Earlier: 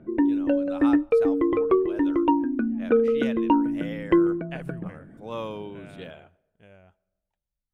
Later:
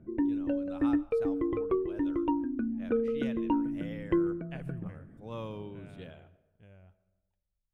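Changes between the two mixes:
speech: send +11.5 dB; master: add EQ curve 110 Hz 0 dB, 170 Hz -5 dB, 640 Hz -11 dB

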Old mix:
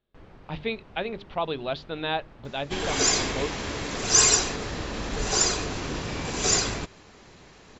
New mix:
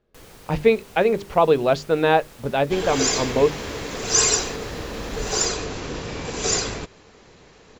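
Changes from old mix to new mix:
speech: remove ladder low-pass 4100 Hz, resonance 60%; first sound: remove tape spacing loss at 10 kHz 40 dB; master: add bell 470 Hz +6 dB 0.36 oct

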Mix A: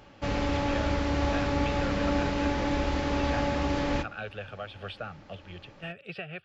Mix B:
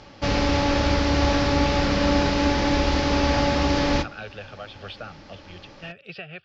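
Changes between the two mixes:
background +6.5 dB; master: add synth low-pass 5300 Hz, resonance Q 2.4

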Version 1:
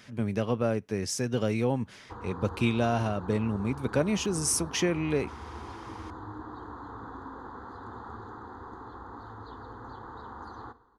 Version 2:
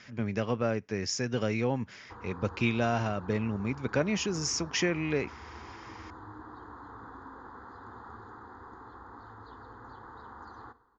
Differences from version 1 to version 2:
speech +3.5 dB; master: add rippled Chebyshev low-pass 7100 Hz, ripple 6 dB

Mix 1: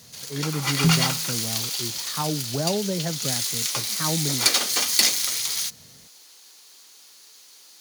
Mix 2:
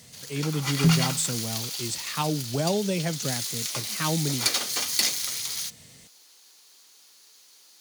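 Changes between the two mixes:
speech: remove polynomial smoothing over 41 samples; first sound -5.0 dB

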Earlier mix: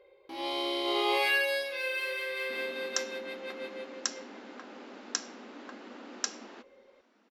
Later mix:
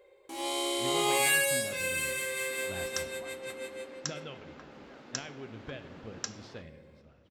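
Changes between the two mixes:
speech: unmuted; first sound: remove EQ curve 5000 Hz 0 dB, 7600 Hz -27 dB, 11000 Hz -13 dB; second sound -4.5 dB

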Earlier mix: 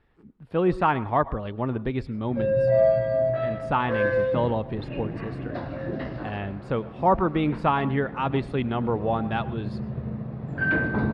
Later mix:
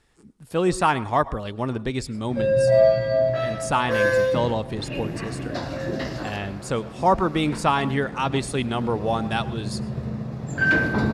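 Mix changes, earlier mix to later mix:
background: send +11.0 dB; master: remove air absorption 420 m

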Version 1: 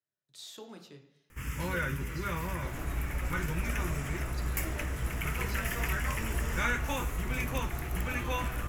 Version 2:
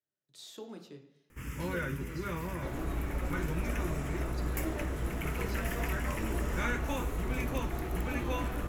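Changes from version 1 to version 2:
speech -3.0 dB; first sound -5.0 dB; master: add bell 310 Hz +7 dB 2 oct

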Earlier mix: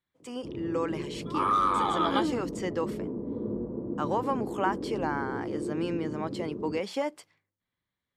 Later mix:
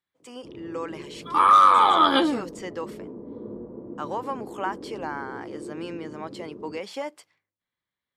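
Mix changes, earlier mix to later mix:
second sound +11.0 dB; master: add low shelf 320 Hz -8.5 dB

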